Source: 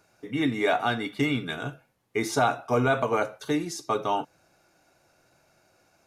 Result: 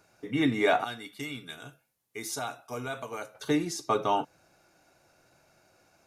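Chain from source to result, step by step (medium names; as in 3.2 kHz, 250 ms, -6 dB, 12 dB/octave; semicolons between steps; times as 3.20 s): 0.84–3.35 s: pre-emphasis filter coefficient 0.8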